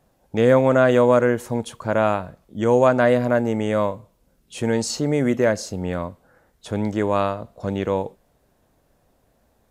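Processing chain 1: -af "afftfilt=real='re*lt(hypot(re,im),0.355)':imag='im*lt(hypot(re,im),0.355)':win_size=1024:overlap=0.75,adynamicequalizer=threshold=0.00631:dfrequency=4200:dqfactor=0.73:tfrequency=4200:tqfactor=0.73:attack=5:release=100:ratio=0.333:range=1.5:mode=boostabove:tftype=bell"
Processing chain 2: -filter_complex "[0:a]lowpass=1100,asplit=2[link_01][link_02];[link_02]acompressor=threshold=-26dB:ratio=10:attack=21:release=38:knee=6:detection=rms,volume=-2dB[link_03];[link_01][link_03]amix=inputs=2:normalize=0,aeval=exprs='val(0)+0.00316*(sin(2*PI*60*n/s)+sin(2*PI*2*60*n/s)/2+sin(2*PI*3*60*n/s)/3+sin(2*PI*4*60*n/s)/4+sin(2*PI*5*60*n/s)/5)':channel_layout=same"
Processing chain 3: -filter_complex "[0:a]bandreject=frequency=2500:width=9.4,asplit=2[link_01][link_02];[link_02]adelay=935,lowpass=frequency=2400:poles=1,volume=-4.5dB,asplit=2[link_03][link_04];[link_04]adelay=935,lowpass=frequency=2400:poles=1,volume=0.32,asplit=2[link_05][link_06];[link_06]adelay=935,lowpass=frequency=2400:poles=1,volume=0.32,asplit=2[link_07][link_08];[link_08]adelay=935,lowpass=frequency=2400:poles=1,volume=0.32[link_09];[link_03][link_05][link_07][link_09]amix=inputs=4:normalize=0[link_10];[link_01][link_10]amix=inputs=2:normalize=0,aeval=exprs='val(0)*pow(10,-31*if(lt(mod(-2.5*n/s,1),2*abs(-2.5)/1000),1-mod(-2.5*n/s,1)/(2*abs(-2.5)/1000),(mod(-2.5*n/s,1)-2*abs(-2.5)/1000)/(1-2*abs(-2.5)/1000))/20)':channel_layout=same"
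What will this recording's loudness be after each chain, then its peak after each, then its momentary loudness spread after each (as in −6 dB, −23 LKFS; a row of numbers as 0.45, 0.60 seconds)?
−28.5, −19.0, −28.0 LKFS; −10.0, −2.5, −4.5 dBFS; 9, 12, 20 LU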